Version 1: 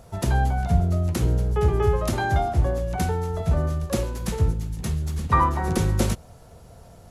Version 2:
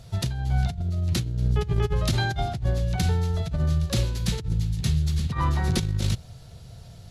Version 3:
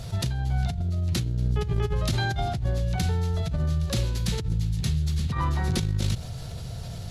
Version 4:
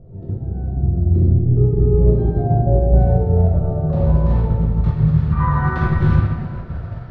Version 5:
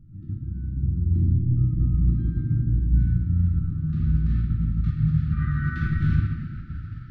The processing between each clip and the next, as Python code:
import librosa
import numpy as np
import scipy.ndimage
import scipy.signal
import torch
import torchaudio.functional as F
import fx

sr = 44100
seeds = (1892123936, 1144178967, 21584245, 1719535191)

y1 = fx.graphic_eq(x, sr, hz=(125, 250, 500, 1000, 4000), db=(8, -5, -5, -7, 10))
y1 = fx.over_compress(y1, sr, threshold_db=-21.0, ratio=-0.5)
y1 = fx.high_shelf(y1, sr, hz=7200.0, db=-4.5)
y1 = y1 * 10.0 ** (-1.5 / 20.0)
y2 = fx.env_flatten(y1, sr, amount_pct=50)
y2 = y2 * 10.0 ** (-3.0 / 20.0)
y3 = fx.filter_sweep_lowpass(y2, sr, from_hz=380.0, to_hz=1500.0, start_s=1.85, end_s=5.56, q=2.4)
y3 = fx.room_shoebox(y3, sr, seeds[0], volume_m3=130.0, walls='hard', distance_m=0.95)
y3 = fx.upward_expand(y3, sr, threshold_db=-27.0, expansion=1.5)
y3 = y3 * 10.0 ** (1.0 / 20.0)
y4 = fx.brickwall_bandstop(y3, sr, low_hz=340.0, high_hz=1200.0)
y4 = y4 * 10.0 ** (-6.5 / 20.0)